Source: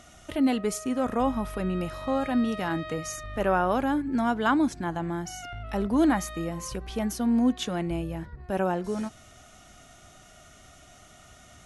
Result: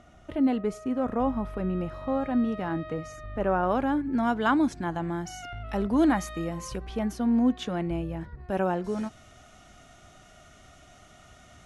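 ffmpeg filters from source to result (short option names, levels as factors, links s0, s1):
-af "asetnsamples=n=441:p=0,asendcmd='3.63 lowpass f 2500;4.23 lowpass f 5700;6.85 lowpass f 2500;8.21 lowpass f 4500',lowpass=f=1100:p=1"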